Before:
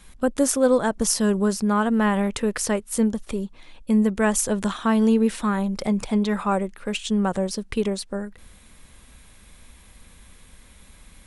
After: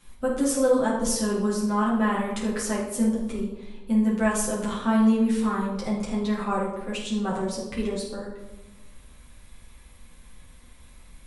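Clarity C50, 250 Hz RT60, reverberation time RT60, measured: 2.5 dB, 1.5 s, 1.1 s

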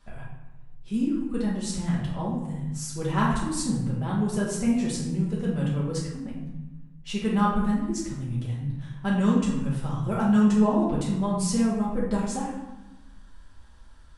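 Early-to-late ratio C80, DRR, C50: 5.5 dB, −6.5 dB, 2.5 dB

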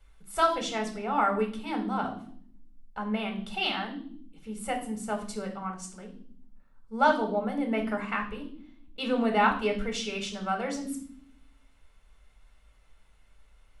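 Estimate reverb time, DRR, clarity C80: non-exponential decay, 2.5 dB, 14.0 dB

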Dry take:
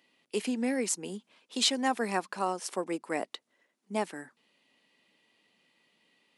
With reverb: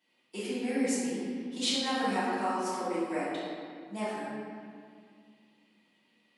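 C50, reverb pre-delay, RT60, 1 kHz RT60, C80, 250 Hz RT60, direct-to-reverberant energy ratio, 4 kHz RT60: −3.5 dB, 3 ms, 2.1 s, 2.1 s, −0.5 dB, 3.0 s, −14.0 dB, 1.4 s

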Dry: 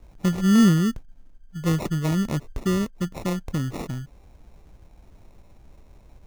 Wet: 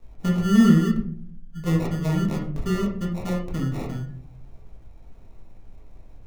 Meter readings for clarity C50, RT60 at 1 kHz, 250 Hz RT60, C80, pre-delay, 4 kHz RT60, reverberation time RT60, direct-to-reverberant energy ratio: 7.0 dB, 0.45 s, 0.95 s, 11.0 dB, 4 ms, 0.30 s, 0.55 s, −3.0 dB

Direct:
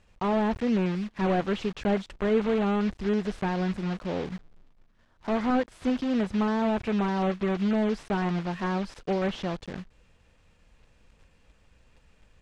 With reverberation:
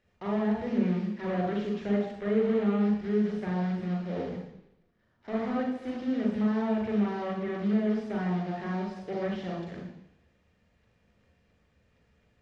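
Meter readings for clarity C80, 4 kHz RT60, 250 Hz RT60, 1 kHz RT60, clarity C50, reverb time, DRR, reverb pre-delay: 6.5 dB, 0.90 s, 0.80 s, 0.85 s, 3.0 dB, 0.85 s, −1.0 dB, 38 ms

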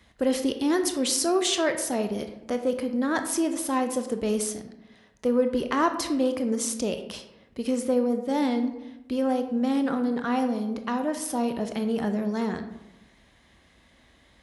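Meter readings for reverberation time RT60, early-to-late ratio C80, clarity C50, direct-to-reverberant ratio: 1.0 s, 11.5 dB, 9.5 dB, 7.0 dB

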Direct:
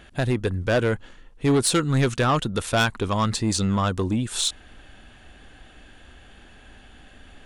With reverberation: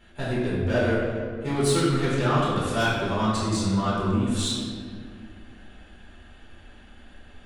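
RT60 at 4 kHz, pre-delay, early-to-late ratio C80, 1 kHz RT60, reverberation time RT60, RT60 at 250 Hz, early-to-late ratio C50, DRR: 1.1 s, 3 ms, 1.0 dB, 1.8 s, 2.1 s, 3.0 s, −1.5 dB, −9.5 dB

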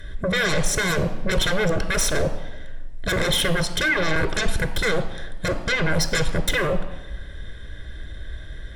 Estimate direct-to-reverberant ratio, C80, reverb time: 9.5 dB, 14.0 dB, 1.1 s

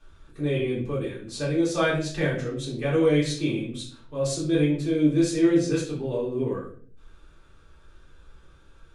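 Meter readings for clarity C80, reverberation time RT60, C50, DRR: 9.5 dB, 0.50 s, 5.5 dB, −8.5 dB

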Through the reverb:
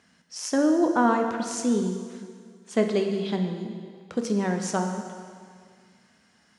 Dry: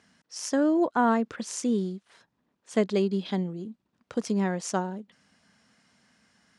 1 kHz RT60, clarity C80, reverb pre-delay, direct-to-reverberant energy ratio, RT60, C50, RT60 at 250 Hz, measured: 2.0 s, 7.0 dB, 4 ms, 4.0 dB, 2.0 s, 6.0 dB, 2.1 s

